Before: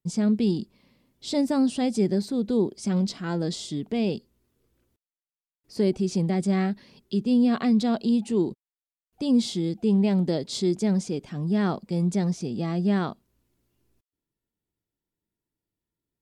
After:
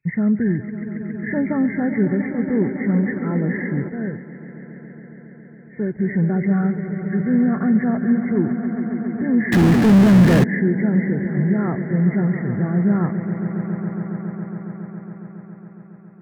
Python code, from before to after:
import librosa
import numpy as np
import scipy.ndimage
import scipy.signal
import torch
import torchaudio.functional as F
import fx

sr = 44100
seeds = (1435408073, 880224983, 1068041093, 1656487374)

p1 = fx.freq_compress(x, sr, knee_hz=1300.0, ratio=4.0)
p2 = p1 + fx.echo_swell(p1, sr, ms=138, loudest=5, wet_db=-13.5, dry=0)
p3 = fx.power_curve(p2, sr, exponent=0.35, at=(9.52, 10.44))
p4 = fx.peak_eq(p3, sr, hz=120.0, db=14.5, octaves=0.98)
y = fx.upward_expand(p4, sr, threshold_db=-29.0, expansion=1.5, at=(3.88, 5.98), fade=0.02)